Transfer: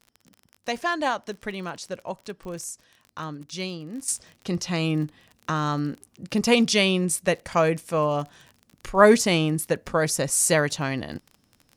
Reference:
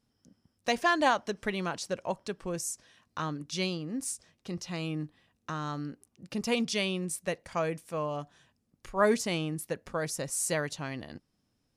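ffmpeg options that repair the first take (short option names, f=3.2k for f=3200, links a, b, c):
-af "adeclick=t=4,asetnsamples=n=441:p=0,asendcmd='4.08 volume volume -10dB',volume=0dB"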